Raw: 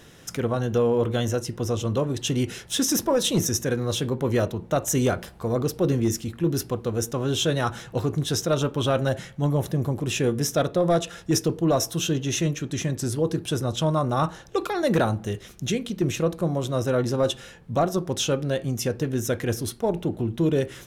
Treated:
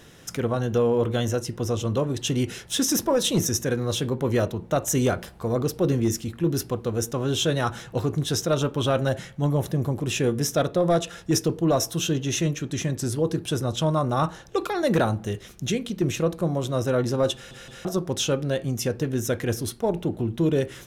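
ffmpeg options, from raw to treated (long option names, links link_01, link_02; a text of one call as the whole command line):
ffmpeg -i in.wav -filter_complex "[0:a]asplit=4[link_01][link_02][link_03][link_04];[link_01]atrim=end=17.512[link_05];[link_02]atrim=start=17.338:end=17.512[link_06];[link_03]atrim=start=17.338:end=17.512[link_07];[link_04]atrim=start=17.848[link_08];[link_05][link_06]acrossfade=duration=0.004:curve1=hsin:curve2=hsin[link_09];[link_09][link_07]acrossfade=duration=0.004:curve1=hsin:curve2=hsin[link_10];[link_10][link_08]acrossfade=duration=0.004:curve1=hsin:curve2=hsin" out.wav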